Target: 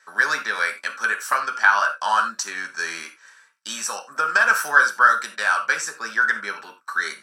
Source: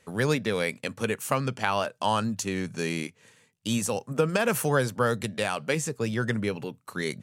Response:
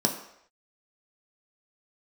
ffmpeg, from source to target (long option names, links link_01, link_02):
-filter_complex "[0:a]highpass=frequency=1400:width_type=q:width=8[link_01];[1:a]atrim=start_sample=2205,atrim=end_sample=4410[link_02];[link_01][link_02]afir=irnorm=-1:irlink=0,volume=-5.5dB"